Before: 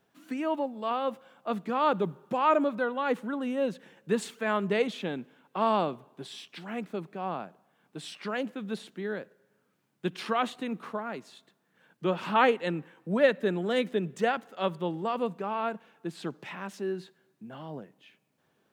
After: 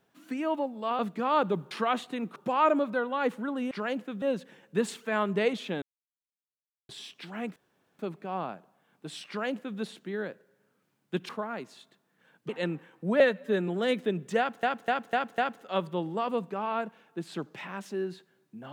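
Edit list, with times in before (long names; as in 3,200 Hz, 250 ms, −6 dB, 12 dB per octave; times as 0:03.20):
0:00.99–0:01.49: remove
0:05.16–0:06.23: silence
0:06.90: splice in room tone 0.43 s
0:08.19–0:08.70: duplicate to 0:03.56
0:10.20–0:10.85: move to 0:02.21
0:12.05–0:12.53: remove
0:13.24–0:13.56: time-stretch 1.5×
0:14.26–0:14.51: repeat, 5 plays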